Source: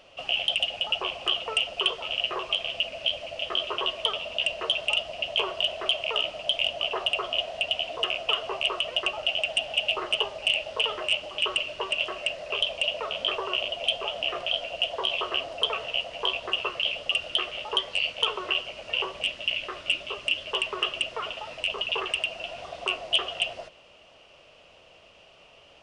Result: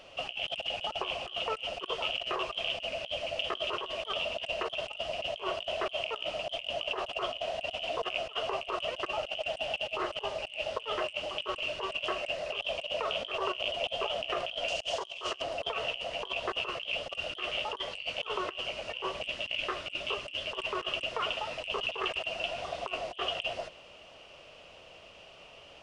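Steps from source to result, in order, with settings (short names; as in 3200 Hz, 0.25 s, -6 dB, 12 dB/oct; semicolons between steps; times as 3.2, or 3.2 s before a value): 14.68–15.42 bell 6700 Hz +14 dB 1.5 oct; negative-ratio compressor -32 dBFS, ratio -0.5; gain -2 dB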